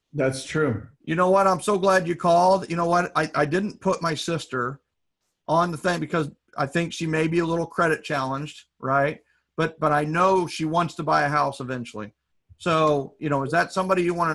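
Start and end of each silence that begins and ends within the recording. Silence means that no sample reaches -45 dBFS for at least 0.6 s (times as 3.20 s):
4.76–5.48 s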